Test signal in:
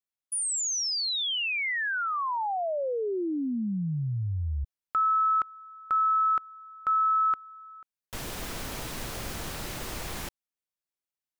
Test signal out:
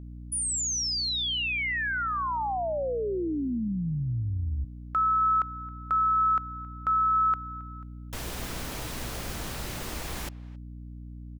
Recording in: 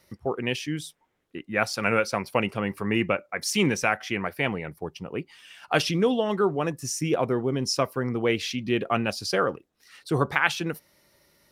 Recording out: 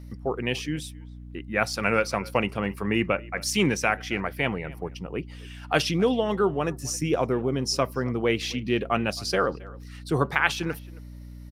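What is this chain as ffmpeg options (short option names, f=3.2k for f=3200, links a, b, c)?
-filter_complex "[0:a]asplit=2[a][b];[b]adelay=270,highpass=300,lowpass=3.4k,asoftclip=type=hard:threshold=-12.5dB,volume=-21dB[c];[a][c]amix=inputs=2:normalize=0,aeval=exprs='val(0)+0.01*(sin(2*PI*60*n/s)+sin(2*PI*2*60*n/s)/2+sin(2*PI*3*60*n/s)/3+sin(2*PI*4*60*n/s)/4+sin(2*PI*5*60*n/s)/5)':c=same"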